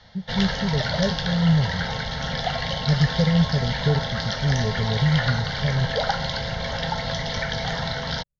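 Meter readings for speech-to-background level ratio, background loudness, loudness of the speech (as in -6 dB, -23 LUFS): 2.5 dB, -26.5 LUFS, -24.0 LUFS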